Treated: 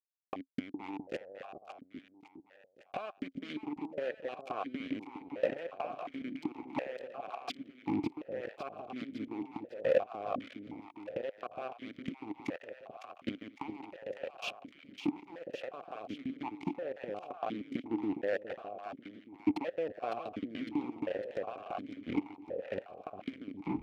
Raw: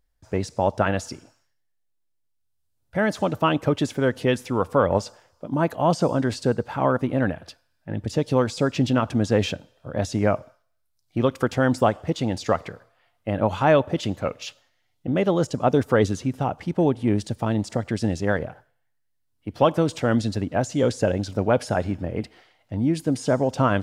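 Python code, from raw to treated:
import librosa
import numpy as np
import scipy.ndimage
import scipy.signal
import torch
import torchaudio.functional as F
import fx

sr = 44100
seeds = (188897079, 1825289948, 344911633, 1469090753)

y = fx.tape_stop_end(x, sr, length_s=0.47)
y = fx.leveller(y, sr, passes=1)
y = fx.level_steps(y, sr, step_db=21)
y = fx.gate_flip(y, sr, shuts_db=-28.0, range_db=-27)
y = fx.rider(y, sr, range_db=10, speed_s=2.0)
y = fx.fuzz(y, sr, gain_db=43.0, gate_db=-45.0)
y = fx.echo_split(y, sr, split_hz=700.0, low_ms=411, high_ms=556, feedback_pct=52, wet_db=-7.0)
y = fx.vowel_held(y, sr, hz=2.8)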